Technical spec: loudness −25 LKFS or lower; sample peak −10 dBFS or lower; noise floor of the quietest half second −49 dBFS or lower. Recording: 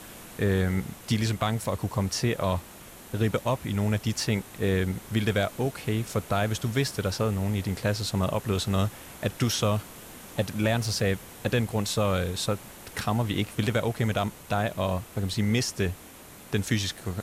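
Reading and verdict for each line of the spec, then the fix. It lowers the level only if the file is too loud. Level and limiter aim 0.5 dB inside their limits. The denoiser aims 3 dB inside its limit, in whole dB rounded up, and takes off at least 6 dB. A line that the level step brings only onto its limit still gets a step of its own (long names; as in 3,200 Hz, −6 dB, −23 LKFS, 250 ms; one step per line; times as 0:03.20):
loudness −28.0 LKFS: in spec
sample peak −11.5 dBFS: in spec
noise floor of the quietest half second −47 dBFS: out of spec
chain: broadband denoise 6 dB, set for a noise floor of −47 dBFS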